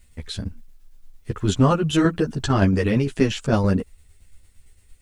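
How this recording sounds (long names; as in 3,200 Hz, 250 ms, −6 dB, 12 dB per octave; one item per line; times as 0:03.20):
a quantiser's noise floor 12 bits, dither triangular
tremolo saw down 8.8 Hz, depth 50%
a shimmering, thickened sound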